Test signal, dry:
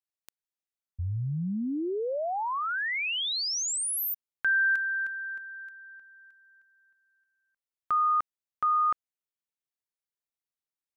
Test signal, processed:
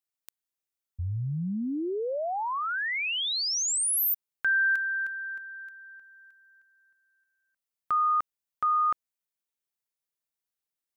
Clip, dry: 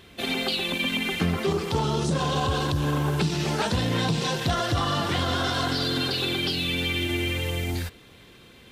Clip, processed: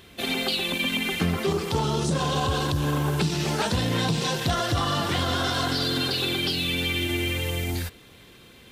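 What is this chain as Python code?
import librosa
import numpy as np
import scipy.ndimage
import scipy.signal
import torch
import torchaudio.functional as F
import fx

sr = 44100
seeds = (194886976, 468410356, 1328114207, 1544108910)

y = fx.high_shelf(x, sr, hz=8000.0, db=6.0)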